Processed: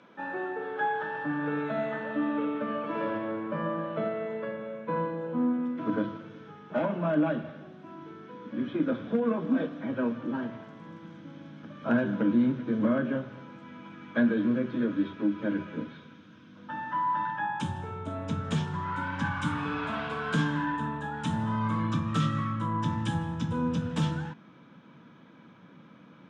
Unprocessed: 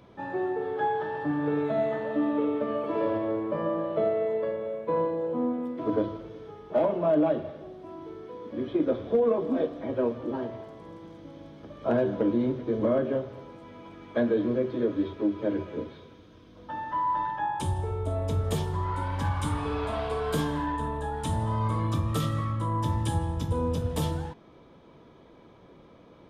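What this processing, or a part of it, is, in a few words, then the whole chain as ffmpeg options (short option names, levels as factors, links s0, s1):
television speaker: -af "highpass=f=190:w=0.5412,highpass=f=190:w=1.3066,equalizer=f=390:t=q:w=4:g=-6,equalizer=f=690:t=q:w=4:g=-4,equalizer=f=1500:t=q:w=4:g=10,equalizer=f=2600:t=q:w=4:g=4,equalizer=f=4600:t=q:w=4:g=-5,lowpass=f=6900:w=0.5412,lowpass=f=6900:w=1.3066,asubboost=boost=9:cutoff=140"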